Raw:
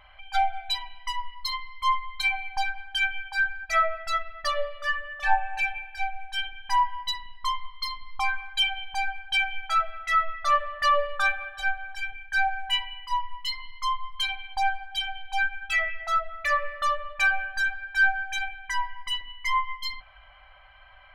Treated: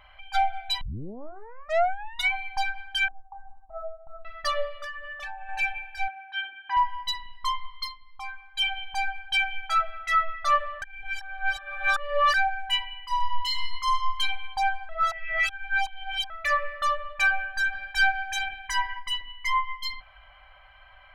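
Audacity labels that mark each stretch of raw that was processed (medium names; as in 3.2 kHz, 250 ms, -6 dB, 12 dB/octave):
0.810000	0.810000	tape start 1.51 s
3.080000	4.250000	rippled Chebyshev low-pass 1.2 kHz, ripple 6 dB
4.840000	5.490000	compression 10:1, threshold -33 dBFS
6.080000	6.770000	cabinet simulation 280–3000 Hz, peaks and dips at 620 Hz -3 dB, 900 Hz -3 dB, 1.4 kHz +5 dB, 2.1 kHz -3 dB
7.810000	8.660000	dip -11 dB, fades 0.13 s
10.820000	12.340000	reverse
13.090000	14.180000	reverb throw, RT60 1.5 s, DRR 0 dB
14.890000	16.300000	reverse
17.720000	18.980000	spectral peaks clipped ceiling under each frame's peak by 13 dB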